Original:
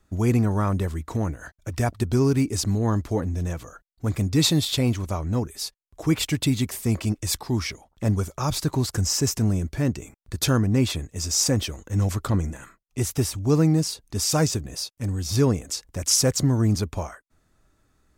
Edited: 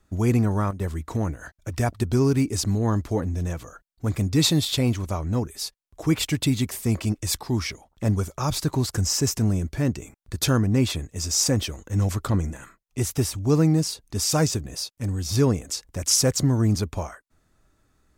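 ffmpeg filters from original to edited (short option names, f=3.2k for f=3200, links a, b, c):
-filter_complex "[0:a]asplit=3[a][b][c];[a]atrim=end=0.71,asetpts=PTS-STARTPTS,afade=t=out:st=0.47:d=0.24:c=log:silence=0.251189[d];[b]atrim=start=0.71:end=0.8,asetpts=PTS-STARTPTS,volume=-12dB[e];[c]atrim=start=0.8,asetpts=PTS-STARTPTS,afade=t=in:d=0.24:c=log:silence=0.251189[f];[d][e][f]concat=n=3:v=0:a=1"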